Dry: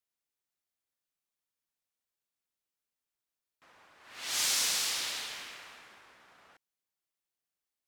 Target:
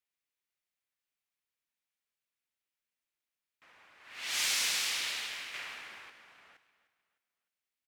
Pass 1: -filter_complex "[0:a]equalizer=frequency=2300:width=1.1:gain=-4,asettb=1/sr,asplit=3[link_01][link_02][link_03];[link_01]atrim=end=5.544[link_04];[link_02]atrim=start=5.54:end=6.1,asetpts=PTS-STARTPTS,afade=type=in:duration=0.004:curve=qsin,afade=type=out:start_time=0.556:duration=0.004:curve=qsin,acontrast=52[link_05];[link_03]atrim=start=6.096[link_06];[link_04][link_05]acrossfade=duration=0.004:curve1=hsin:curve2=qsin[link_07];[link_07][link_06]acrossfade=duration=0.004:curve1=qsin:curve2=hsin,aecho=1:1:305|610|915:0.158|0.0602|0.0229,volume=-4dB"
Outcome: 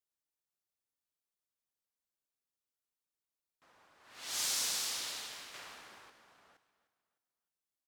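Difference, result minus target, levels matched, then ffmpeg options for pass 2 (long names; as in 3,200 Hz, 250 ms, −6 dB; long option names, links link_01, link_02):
2,000 Hz band −7.0 dB
-filter_complex "[0:a]equalizer=frequency=2300:width=1.1:gain=8,asettb=1/sr,asplit=3[link_01][link_02][link_03];[link_01]atrim=end=5.544[link_04];[link_02]atrim=start=5.54:end=6.1,asetpts=PTS-STARTPTS,afade=type=in:duration=0.004:curve=qsin,afade=type=out:start_time=0.556:duration=0.004:curve=qsin,acontrast=52[link_05];[link_03]atrim=start=6.096[link_06];[link_04][link_05]acrossfade=duration=0.004:curve1=hsin:curve2=qsin[link_07];[link_07][link_06]acrossfade=duration=0.004:curve1=qsin:curve2=hsin,aecho=1:1:305|610|915:0.158|0.0602|0.0229,volume=-4dB"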